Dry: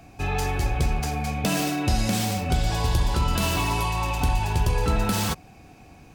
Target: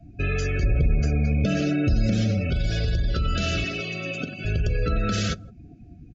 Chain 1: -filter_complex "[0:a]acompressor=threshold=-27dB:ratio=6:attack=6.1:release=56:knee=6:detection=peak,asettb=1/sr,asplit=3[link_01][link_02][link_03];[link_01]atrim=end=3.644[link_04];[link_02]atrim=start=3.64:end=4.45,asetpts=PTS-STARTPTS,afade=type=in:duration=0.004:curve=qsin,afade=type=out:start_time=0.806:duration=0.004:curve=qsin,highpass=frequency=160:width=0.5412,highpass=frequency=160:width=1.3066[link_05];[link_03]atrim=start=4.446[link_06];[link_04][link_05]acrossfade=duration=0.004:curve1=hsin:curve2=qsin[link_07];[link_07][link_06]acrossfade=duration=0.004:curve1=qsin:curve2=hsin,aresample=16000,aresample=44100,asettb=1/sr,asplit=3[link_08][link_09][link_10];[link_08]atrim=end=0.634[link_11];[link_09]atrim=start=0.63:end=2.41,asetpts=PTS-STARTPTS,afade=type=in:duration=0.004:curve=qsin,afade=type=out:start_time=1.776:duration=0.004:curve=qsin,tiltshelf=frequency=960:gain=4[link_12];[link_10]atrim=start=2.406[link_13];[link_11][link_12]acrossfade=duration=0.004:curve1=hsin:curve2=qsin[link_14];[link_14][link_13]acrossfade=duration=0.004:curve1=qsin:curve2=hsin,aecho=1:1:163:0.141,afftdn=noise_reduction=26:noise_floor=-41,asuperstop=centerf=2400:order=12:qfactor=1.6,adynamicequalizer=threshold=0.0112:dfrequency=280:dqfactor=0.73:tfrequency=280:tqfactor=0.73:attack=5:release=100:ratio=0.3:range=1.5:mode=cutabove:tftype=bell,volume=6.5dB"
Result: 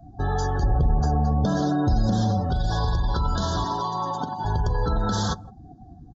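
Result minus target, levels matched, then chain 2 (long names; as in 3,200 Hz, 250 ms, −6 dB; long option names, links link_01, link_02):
1,000 Hz band +11.5 dB
-filter_complex "[0:a]acompressor=threshold=-27dB:ratio=6:attack=6.1:release=56:knee=6:detection=peak,asettb=1/sr,asplit=3[link_01][link_02][link_03];[link_01]atrim=end=3.644[link_04];[link_02]atrim=start=3.64:end=4.45,asetpts=PTS-STARTPTS,afade=type=in:duration=0.004:curve=qsin,afade=type=out:start_time=0.806:duration=0.004:curve=qsin,highpass=frequency=160:width=0.5412,highpass=frequency=160:width=1.3066[link_05];[link_03]atrim=start=4.446[link_06];[link_04][link_05]acrossfade=duration=0.004:curve1=hsin:curve2=qsin[link_07];[link_07][link_06]acrossfade=duration=0.004:curve1=qsin:curve2=hsin,aresample=16000,aresample=44100,asettb=1/sr,asplit=3[link_08][link_09][link_10];[link_08]atrim=end=0.634[link_11];[link_09]atrim=start=0.63:end=2.41,asetpts=PTS-STARTPTS,afade=type=in:duration=0.004:curve=qsin,afade=type=out:start_time=1.776:duration=0.004:curve=qsin,tiltshelf=frequency=960:gain=4[link_12];[link_10]atrim=start=2.406[link_13];[link_11][link_12]acrossfade=duration=0.004:curve1=hsin:curve2=qsin[link_14];[link_14][link_13]acrossfade=duration=0.004:curve1=qsin:curve2=hsin,aecho=1:1:163:0.141,afftdn=noise_reduction=26:noise_floor=-41,asuperstop=centerf=920:order=12:qfactor=1.6,adynamicequalizer=threshold=0.0112:dfrequency=280:dqfactor=0.73:tfrequency=280:tqfactor=0.73:attack=5:release=100:ratio=0.3:range=1.5:mode=cutabove:tftype=bell,volume=6.5dB"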